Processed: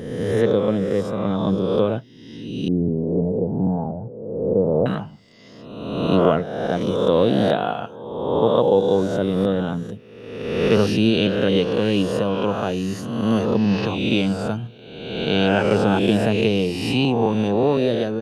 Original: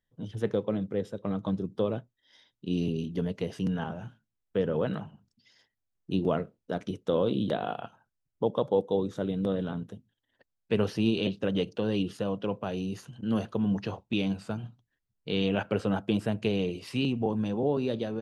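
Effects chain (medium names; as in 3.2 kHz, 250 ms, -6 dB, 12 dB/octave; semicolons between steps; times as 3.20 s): reverse spectral sustain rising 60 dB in 1.29 s; 2.68–4.86 s: steep low-pass 830 Hz 36 dB/octave; trim +7.5 dB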